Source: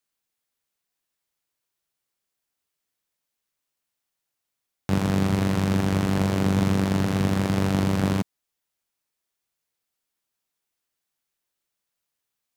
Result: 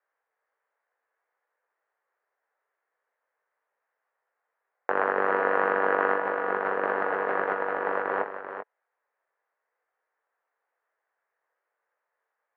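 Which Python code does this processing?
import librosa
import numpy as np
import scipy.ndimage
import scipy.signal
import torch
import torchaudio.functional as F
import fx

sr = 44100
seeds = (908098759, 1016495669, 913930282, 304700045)

y = fx.zero_step(x, sr, step_db=-25.0, at=(6.21, 8.21))
y = scipy.signal.sosfilt(scipy.signal.ellip(3, 1.0, 70, [460.0, 1800.0], 'bandpass', fs=sr, output='sos'), y)
y = fx.over_compress(y, sr, threshold_db=-34.0, ratio=-0.5)
y = fx.doubler(y, sr, ms=20.0, db=-7.0)
y = y + 10.0 ** (-9.0 / 20.0) * np.pad(y, (int(389 * sr / 1000.0), 0))[:len(y)]
y = F.gain(torch.from_numpy(y), 8.0).numpy()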